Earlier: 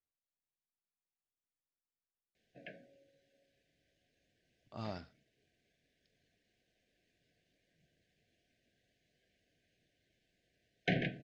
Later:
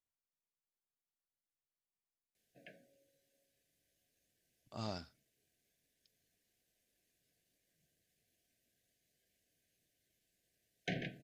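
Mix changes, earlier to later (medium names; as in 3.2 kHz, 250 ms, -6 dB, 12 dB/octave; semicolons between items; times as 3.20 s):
background -7.0 dB; master: remove low-pass 3.6 kHz 12 dB/octave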